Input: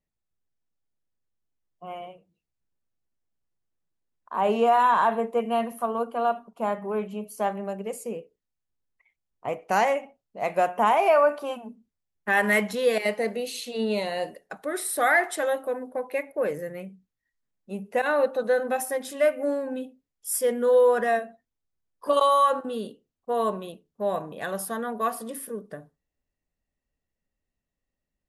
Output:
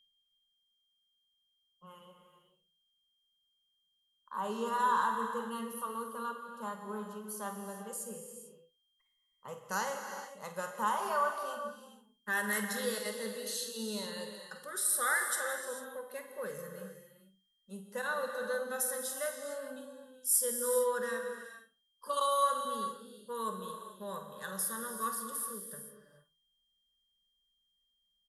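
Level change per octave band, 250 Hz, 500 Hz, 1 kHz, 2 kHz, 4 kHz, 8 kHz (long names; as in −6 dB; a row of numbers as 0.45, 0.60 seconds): −11.0, −14.0, −10.0, −8.5, −5.0, +2.0 decibels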